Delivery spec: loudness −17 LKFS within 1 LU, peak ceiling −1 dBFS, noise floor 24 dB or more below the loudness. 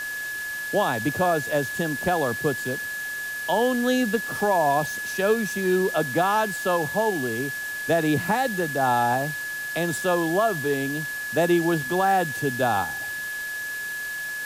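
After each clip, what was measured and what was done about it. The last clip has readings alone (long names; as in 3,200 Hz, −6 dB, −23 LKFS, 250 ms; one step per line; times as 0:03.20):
interfering tone 1,700 Hz; level of the tone −29 dBFS; background noise floor −32 dBFS; target noise floor −48 dBFS; integrated loudness −24.0 LKFS; sample peak −10.0 dBFS; target loudness −17.0 LKFS
→ notch filter 1,700 Hz, Q 30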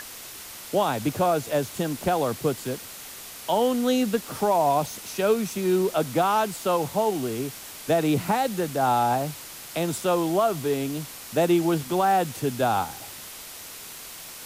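interfering tone none found; background noise floor −41 dBFS; target noise floor −49 dBFS
→ broadband denoise 8 dB, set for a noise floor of −41 dBFS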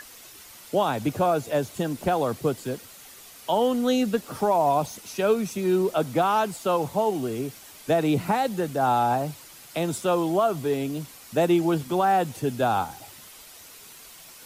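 background noise floor −47 dBFS; target noise floor −49 dBFS
→ broadband denoise 6 dB, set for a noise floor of −47 dBFS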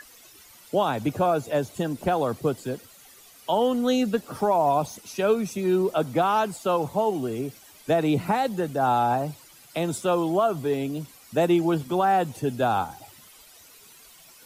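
background noise floor −51 dBFS; integrated loudness −25.0 LKFS; sample peak −10.5 dBFS; target loudness −17.0 LKFS
→ level +8 dB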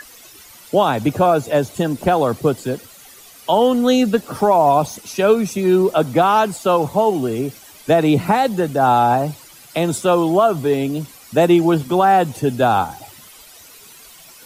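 integrated loudness −17.0 LKFS; sample peak −2.5 dBFS; background noise floor −43 dBFS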